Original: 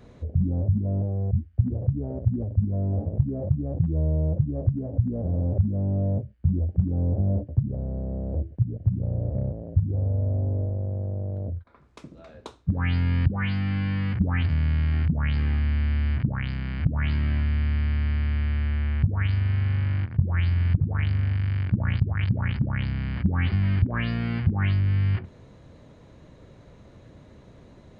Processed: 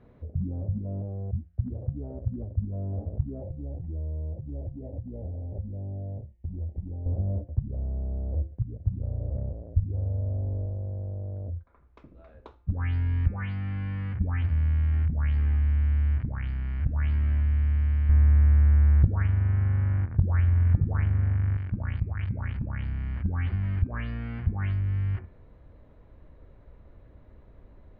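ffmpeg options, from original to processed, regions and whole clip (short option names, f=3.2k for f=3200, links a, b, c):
-filter_complex "[0:a]asettb=1/sr,asplit=3[a][b][c];[a]atrim=end=3.424[d];[b]atrim=start=3.42:end=7.06,asetpts=PTS-STARTPTS,afade=t=in:d=0.004:c=qsin,afade=t=out:st=3.636:d=0.004:c=qsin,asplit=2[e][f];[f]adelay=28,volume=-12dB[g];[e][g]amix=inputs=2:normalize=0,atrim=end_sample=160524,acompressor=threshold=-27dB:ratio=4:attack=3.2:release=140:knee=1:detection=peak,asuperstop=centerf=1300:order=20:qfactor=1.7[h];[c]atrim=start=7.056[i];[d][h]acrossfade=d=0.004:c1=hsin:c2=qsin[j];[j][i]acrossfade=d=0.004:c1=qsin:c2=hsin,asettb=1/sr,asplit=3[k][l][m];[k]atrim=end=18.094[n];[l]atrim=start=18.09:end=21.57,asetpts=PTS-STARTPTS,afade=t=in:d=0.004:c=qsin,afade=t=out:st=3.476:d=0.004:c=qsin,lowpass=1.7k,acontrast=61[o];[m]atrim=start=21.566[p];[n][o]acrossfade=d=0.004:c1=hsin:c2=qsin[q];[q][p]acrossfade=d=0.004:c1=qsin:c2=hsin,lowpass=2.1k,asubboost=boost=7:cutoff=53,bandreject=f=174.1:t=h:w=4,bandreject=f=348.2:t=h:w=4,bandreject=f=522.3:t=h:w=4,bandreject=f=696.4:t=h:w=4,bandreject=f=870.5:t=h:w=4,bandreject=f=1.0446k:t=h:w=4,bandreject=f=1.2187k:t=h:w=4,bandreject=f=1.3928k:t=h:w=4,bandreject=f=1.5669k:t=h:w=4,bandreject=f=1.741k:t=h:w=4,bandreject=f=1.9151k:t=h:w=4,bandreject=f=2.0892k:t=h:w=4,bandreject=f=2.2633k:t=h:w=4,bandreject=f=2.4374k:t=h:w=4,bandreject=f=2.6115k:t=h:w=4,volume=-6dB"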